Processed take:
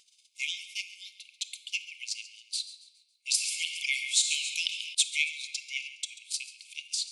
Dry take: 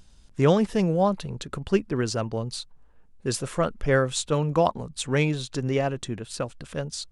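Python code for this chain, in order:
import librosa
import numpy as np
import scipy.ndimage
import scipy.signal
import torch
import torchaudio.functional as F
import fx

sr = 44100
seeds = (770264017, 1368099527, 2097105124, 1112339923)

y = fx.transient(x, sr, attack_db=6, sustain_db=-9)
y = fx.brickwall_highpass(y, sr, low_hz=2100.0)
y = fx.echo_feedback(y, sr, ms=138, feedback_pct=42, wet_db=-16.5)
y = fx.room_shoebox(y, sr, seeds[0], volume_m3=1400.0, walls='mixed', distance_m=0.58)
y = fx.env_flatten(y, sr, amount_pct=50, at=(3.29, 4.93), fade=0.02)
y = y * 10.0 ** (2.5 / 20.0)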